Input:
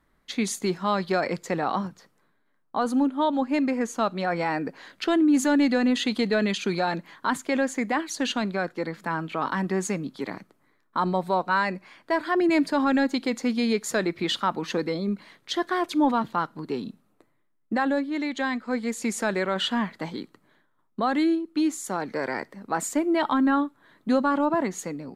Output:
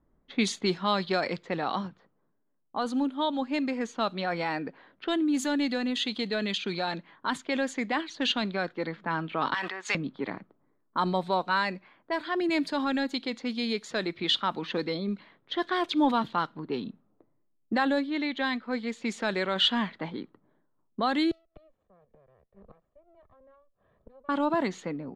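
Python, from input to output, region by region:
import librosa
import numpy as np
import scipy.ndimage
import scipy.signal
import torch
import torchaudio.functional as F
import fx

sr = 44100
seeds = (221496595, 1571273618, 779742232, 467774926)

y = fx.chain(x, sr, fx.highpass(hz=1100.0, slope=12),
    fx.high_shelf(hz=5700.0, db=7.0),
    fx.sustainer(db_per_s=27.0), at=(9.54, 9.95))
y = fx.chain(y, sr, fx.lower_of_two(delay_ms=1.7),
    fx.gate_flip(shuts_db=-28.0, range_db=-25),
    fx.band_squash(depth_pct=40), at=(21.31, 24.29))
y = fx.env_lowpass(y, sr, base_hz=640.0, full_db=-19.5)
y = fx.peak_eq(y, sr, hz=3500.0, db=9.5, octaves=0.88)
y = fx.rider(y, sr, range_db=10, speed_s=2.0)
y = y * librosa.db_to_amplitude(-5.5)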